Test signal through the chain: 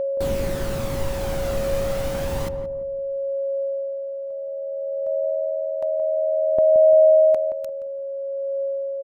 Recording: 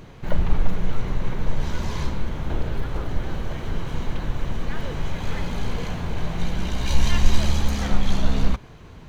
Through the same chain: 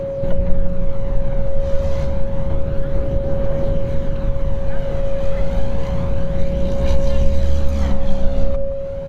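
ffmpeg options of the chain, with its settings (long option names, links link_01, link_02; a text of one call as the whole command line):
ffmpeg -i in.wav -filter_complex "[0:a]tiltshelf=frequency=1200:gain=4.5,acompressor=threshold=-28dB:ratio=2,aeval=exprs='val(0)+0.0316*sin(2*PI*550*n/s)':channel_layout=same,aphaser=in_gain=1:out_gain=1:delay=1.7:decay=0.32:speed=0.29:type=triangular,asplit=2[link_01][link_02];[link_02]adelay=173,lowpass=frequency=830:poles=1,volume=-6dB,asplit=2[link_03][link_04];[link_04]adelay=173,lowpass=frequency=830:poles=1,volume=0.39,asplit=2[link_05][link_06];[link_06]adelay=173,lowpass=frequency=830:poles=1,volume=0.39,asplit=2[link_07][link_08];[link_08]adelay=173,lowpass=frequency=830:poles=1,volume=0.39,asplit=2[link_09][link_10];[link_10]adelay=173,lowpass=frequency=830:poles=1,volume=0.39[link_11];[link_01][link_03][link_05][link_07][link_09][link_11]amix=inputs=6:normalize=0,volume=5.5dB" out.wav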